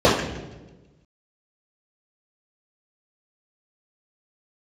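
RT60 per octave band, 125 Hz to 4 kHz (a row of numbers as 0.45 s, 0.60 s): 1.6 s, 1.5 s, 1.4 s, 1.0 s, 0.90 s, 0.90 s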